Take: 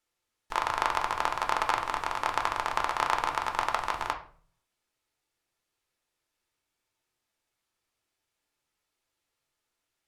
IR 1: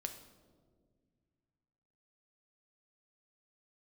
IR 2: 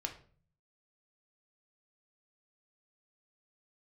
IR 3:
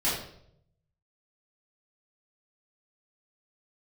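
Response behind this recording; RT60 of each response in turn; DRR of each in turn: 2; 1.8, 0.45, 0.70 s; 5.5, 3.0, -10.0 dB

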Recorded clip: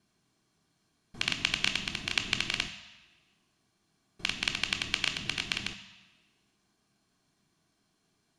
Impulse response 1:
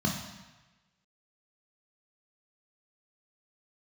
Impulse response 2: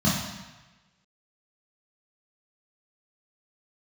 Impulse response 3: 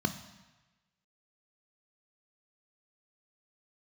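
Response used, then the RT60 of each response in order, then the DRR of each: 3; 1.1, 1.1, 1.1 s; -0.5, -7.5, 8.0 dB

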